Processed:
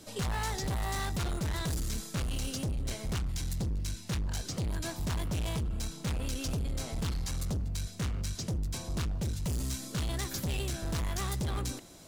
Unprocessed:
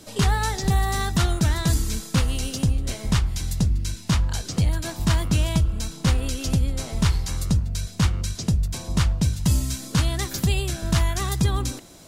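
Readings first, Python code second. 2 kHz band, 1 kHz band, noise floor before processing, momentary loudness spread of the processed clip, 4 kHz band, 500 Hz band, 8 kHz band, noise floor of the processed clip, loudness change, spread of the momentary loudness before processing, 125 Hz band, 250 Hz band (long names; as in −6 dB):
−10.0 dB, −10.0 dB, −40 dBFS, 2 LU, −9.5 dB, −8.0 dB, −9.0 dB, −46 dBFS, −10.5 dB, 4 LU, −11.5 dB, −11.5 dB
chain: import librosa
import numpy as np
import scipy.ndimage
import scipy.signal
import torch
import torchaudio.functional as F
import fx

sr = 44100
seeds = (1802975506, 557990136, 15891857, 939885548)

y = np.clip(x, -10.0 ** (-24.5 / 20.0), 10.0 ** (-24.5 / 20.0))
y = F.gain(torch.from_numpy(y), -5.5).numpy()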